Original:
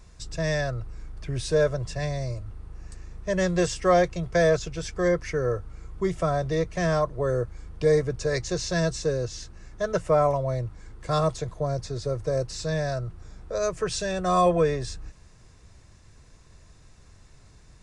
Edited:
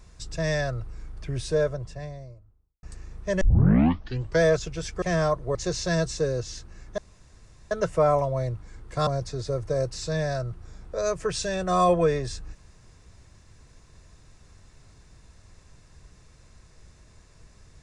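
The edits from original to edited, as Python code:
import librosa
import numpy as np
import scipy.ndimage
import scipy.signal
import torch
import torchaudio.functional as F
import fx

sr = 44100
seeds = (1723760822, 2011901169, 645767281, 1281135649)

y = fx.studio_fade_out(x, sr, start_s=1.1, length_s=1.73)
y = fx.edit(y, sr, fx.tape_start(start_s=3.41, length_s=1.01),
    fx.cut(start_s=5.02, length_s=1.71),
    fx.cut(start_s=7.26, length_s=1.14),
    fx.insert_room_tone(at_s=9.83, length_s=0.73),
    fx.cut(start_s=11.19, length_s=0.45), tone=tone)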